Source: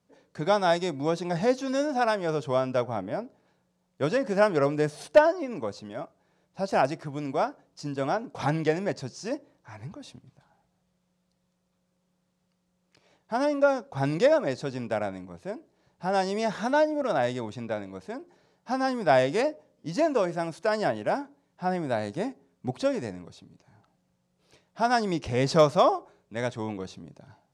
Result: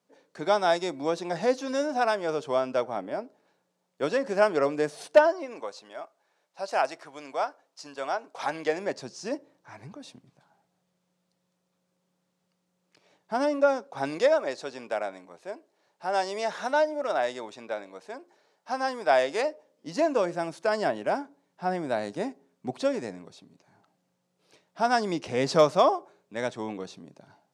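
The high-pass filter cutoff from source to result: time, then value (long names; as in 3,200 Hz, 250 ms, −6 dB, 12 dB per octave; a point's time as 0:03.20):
0:05.16 270 Hz
0:05.71 610 Hz
0:08.42 610 Hz
0:09.24 180 Hz
0:13.35 180 Hz
0:14.37 440 Hz
0:19.48 440 Hz
0:20.15 200 Hz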